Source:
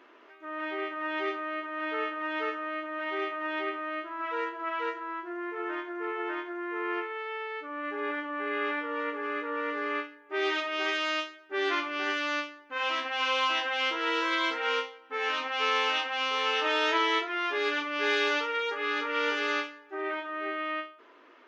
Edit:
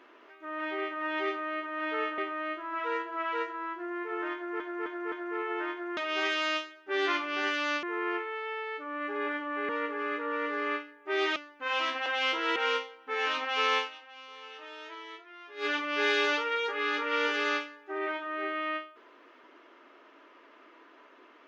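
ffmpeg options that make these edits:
ffmpeg -i in.wav -filter_complex "[0:a]asplit=13[link_01][link_02][link_03][link_04][link_05][link_06][link_07][link_08][link_09][link_10][link_11][link_12][link_13];[link_01]atrim=end=2.182[link_14];[link_02]atrim=start=3.648:end=6.072[link_15];[link_03]atrim=start=5.808:end=6.072[link_16];[link_04]atrim=start=5.808:end=6.072[link_17];[link_05]atrim=start=5.808:end=6.662[link_18];[link_06]atrim=start=10.598:end=12.462[link_19];[link_07]atrim=start=6.658:end=8.522[link_20];[link_08]atrim=start=8.928:end=10.602[link_21];[link_09]atrim=start=12.458:end=13.162[link_22];[link_10]atrim=start=13.638:end=14.142[link_23];[link_11]atrim=start=14.588:end=15.95,asetpts=PTS-STARTPTS,afade=type=out:start_time=1.222:duration=0.14:curve=qua:silence=0.11885[link_24];[link_12]atrim=start=15.95:end=17.56,asetpts=PTS-STARTPTS,volume=-18.5dB[link_25];[link_13]atrim=start=17.56,asetpts=PTS-STARTPTS,afade=type=in:duration=0.14:curve=qua:silence=0.11885[link_26];[link_14][link_15]acrossfade=duration=0.004:curve1=hsin:curve2=hsin[link_27];[link_27][link_16]acrossfade=duration=0.004:curve1=hsin:curve2=hsin[link_28];[link_28][link_17]acrossfade=duration=0.004:curve1=hsin:curve2=hsin[link_29];[link_29][link_18]acrossfade=duration=0.004:curve1=hsin:curve2=hsin[link_30];[link_30][link_19]acrossfade=duration=0.004:curve1=hsin:curve2=hsin[link_31];[link_31][link_20]acrossfade=duration=0.004:curve1=hsin:curve2=hsin[link_32];[link_32][link_21]acrossfade=duration=0.004:curve1=hsin:curve2=hsin[link_33];[link_33][link_22]acrossfade=duration=0.004:curve1=hsin:curve2=hsin[link_34];[link_34][link_23]acrossfade=duration=0.004:curve1=hsin:curve2=hsin[link_35];[link_24][link_25][link_26]concat=n=3:v=0:a=1[link_36];[link_35][link_36]acrossfade=duration=0.004:curve1=hsin:curve2=hsin" out.wav

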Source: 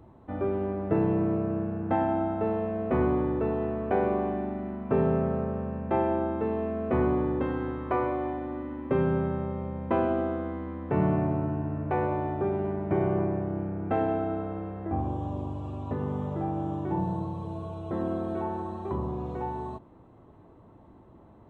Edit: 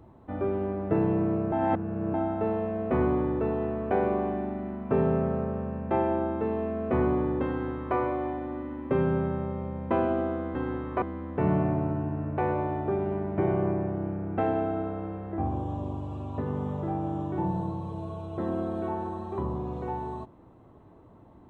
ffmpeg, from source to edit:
ffmpeg -i in.wav -filter_complex "[0:a]asplit=5[link_01][link_02][link_03][link_04][link_05];[link_01]atrim=end=1.522[link_06];[link_02]atrim=start=1.518:end=2.142,asetpts=PTS-STARTPTS,areverse[link_07];[link_03]atrim=start=2.138:end=10.552[link_08];[link_04]atrim=start=7.488:end=7.962[link_09];[link_05]atrim=start=10.548[link_10];[link_06][link_07]acrossfade=duration=0.004:curve1=hsin:curve2=hsin[link_11];[link_11][link_08]acrossfade=duration=0.004:curve1=hsin:curve2=hsin[link_12];[link_12][link_09]acrossfade=duration=0.004:curve1=hsin:curve2=hsin[link_13];[link_13][link_10]acrossfade=duration=0.004:curve1=hsin:curve2=hsin" out.wav

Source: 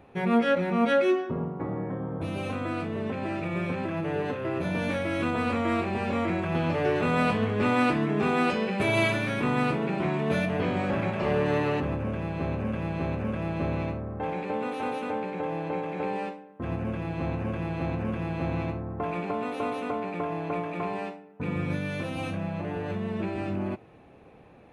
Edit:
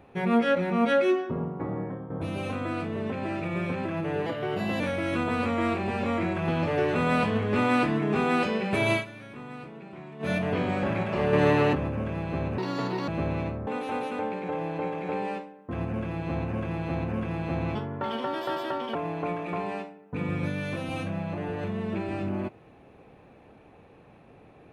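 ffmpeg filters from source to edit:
ffmpeg -i in.wav -filter_complex "[0:a]asplit=13[link_01][link_02][link_03][link_04][link_05][link_06][link_07][link_08][link_09][link_10][link_11][link_12][link_13];[link_01]atrim=end=2.1,asetpts=PTS-STARTPTS,afade=type=out:start_time=1.81:duration=0.29:silence=0.354813[link_14];[link_02]atrim=start=2.1:end=4.264,asetpts=PTS-STARTPTS,afade=type=in:duration=0.004:curve=hsin:silence=0.354813[link_15];[link_03]atrim=start=4.26:end=4.87,asetpts=PTS-STARTPTS,asetrate=49833,aresample=44100,atrim=end_sample=23806,asetpts=PTS-STARTPTS[link_16];[link_04]atrim=start=4.866:end=9.12,asetpts=PTS-STARTPTS,afade=type=out:start_time=4.124:duration=0.13:silence=0.16788[link_17];[link_05]atrim=start=9.12:end=10.26,asetpts=PTS-STARTPTS,volume=-15.5dB[link_18];[link_06]atrim=start=10.26:end=11.402,asetpts=PTS-STARTPTS,afade=type=in:duration=0.13:silence=0.16788[link_19];[link_07]atrim=start=11.398:end=11.822,asetpts=PTS-STARTPTS,volume=4.5dB[link_20];[link_08]atrim=start=11.818:end=12.654[link_21];[link_09]atrim=start=12.65:end=13.5,asetpts=PTS-STARTPTS,asetrate=74970,aresample=44100[link_22];[link_10]atrim=start=13.496:end=14.092[link_23];[link_11]atrim=start=14.578:end=18.664[link_24];[link_12]atrim=start=18.66:end=20.22,asetpts=PTS-STARTPTS,asetrate=57330,aresample=44100[link_25];[link_13]atrim=start=20.216[link_26];[link_14][link_15]concat=n=2:v=0:a=1[link_27];[link_27][link_16]acrossfade=duration=0.004:curve1=hsin:curve2=hsin[link_28];[link_17][link_18][link_19]concat=n=3:v=0:a=1[link_29];[link_28][link_29]acrossfade=duration=0.004:curve1=hsin:curve2=hsin[link_30];[link_30][link_20]acrossfade=duration=0.004:curve1=hsin:curve2=hsin[link_31];[link_31][link_21]acrossfade=duration=0.004:curve1=hsin:curve2=hsin[link_32];[link_32][link_22]acrossfade=duration=0.004:curve1=hsin:curve2=hsin[link_33];[link_33][link_23]acrossfade=duration=0.004:curve1=hsin:curve2=hsin[link_34];[link_34][link_24]acrossfade=duration=0.004:curve1=hsin:curve2=hsin[link_35];[link_35][link_25]acrossfade=duration=0.004:curve1=hsin:curve2=hsin[link_36];[link_36][link_26]acrossfade=duration=0.004:curve1=hsin:curve2=hsin" out.wav

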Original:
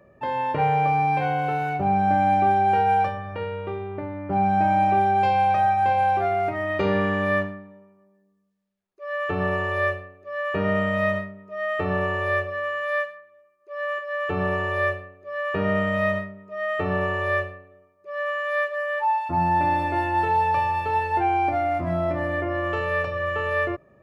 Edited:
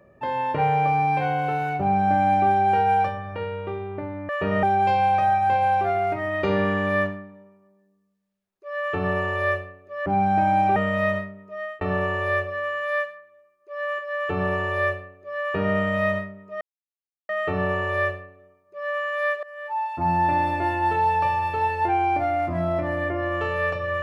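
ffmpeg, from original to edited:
ffmpeg -i in.wav -filter_complex "[0:a]asplit=8[link_01][link_02][link_03][link_04][link_05][link_06][link_07][link_08];[link_01]atrim=end=4.292[link_09];[link_02]atrim=start=10.418:end=10.762[link_10];[link_03]atrim=start=4.988:end=10.422[link_11];[link_04]atrim=start=4.288:end=4.992[link_12];[link_05]atrim=start=10.758:end=11.81,asetpts=PTS-STARTPTS,afade=type=out:start_time=0.642:duration=0.41:curve=qsin[link_13];[link_06]atrim=start=11.81:end=16.61,asetpts=PTS-STARTPTS,afade=type=in:duration=0.004:curve=hsin,afade=type=out:start_time=4.796:duration=0.004:curve=hsin,apad=pad_dur=0.68[link_14];[link_07]atrim=start=16.61:end=18.75,asetpts=PTS-STARTPTS,afade=type=in:duration=0.004:curve=hsin,afade=type=out:start_time=2.136:duration=0.004:curve=hsin:silence=0.1[link_15];[link_08]atrim=start=18.75,asetpts=PTS-STARTPTS,afade=type=in:duration=0.66:silence=0.1[link_16];[link_09][link_10]acrossfade=duration=0.004:curve1=hsin:curve2=hsin[link_17];[link_17][link_11]acrossfade=duration=0.004:curve1=hsin:curve2=hsin[link_18];[link_18][link_12]acrossfade=duration=0.004:curve1=hsin:curve2=hsin[link_19];[link_13][link_14][link_15][link_16]concat=n=4:v=0:a=1[link_20];[link_19][link_20]acrossfade=duration=0.004:curve1=hsin:curve2=hsin" out.wav

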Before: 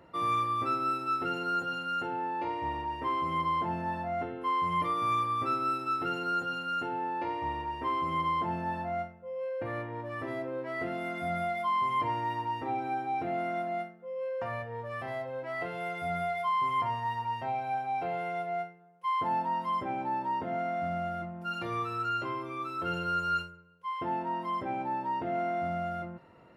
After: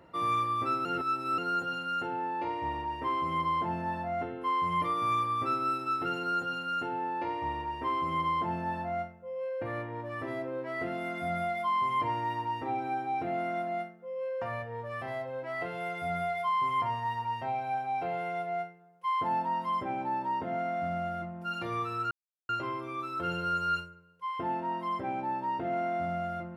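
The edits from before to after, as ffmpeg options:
ffmpeg -i in.wav -filter_complex "[0:a]asplit=4[link_01][link_02][link_03][link_04];[link_01]atrim=end=0.852[link_05];[link_02]atrim=start=0.848:end=1.382,asetpts=PTS-STARTPTS,areverse[link_06];[link_03]atrim=start=1.378:end=22.11,asetpts=PTS-STARTPTS,afade=type=out:start_time=20.728:duration=0.004:curve=hsin,apad=pad_dur=0.38[link_07];[link_04]atrim=start=22.11,asetpts=PTS-STARTPTS,afade=type=in:duration=0.004:curve=hsin[link_08];[link_05][link_06]acrossfade=duration=0.004:curve1=hsin:curve2=hsin[link_09];[link_07][link_08]concat=n=2:v=0:a=1[link_10];[link_09][link_10]acrossfade=duration=0.004:curve1=hsin:curve2=hsin" out.wav

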